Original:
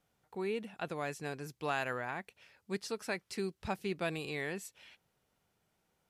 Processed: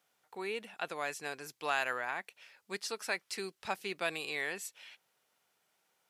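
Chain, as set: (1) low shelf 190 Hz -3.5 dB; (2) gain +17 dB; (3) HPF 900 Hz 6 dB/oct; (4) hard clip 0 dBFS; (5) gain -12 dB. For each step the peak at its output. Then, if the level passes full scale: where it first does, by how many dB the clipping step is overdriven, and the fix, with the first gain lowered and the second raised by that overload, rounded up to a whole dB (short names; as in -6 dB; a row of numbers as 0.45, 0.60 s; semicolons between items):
-21.5, -4.5, -5.0, -5.0, -17.0 dBFS; no overload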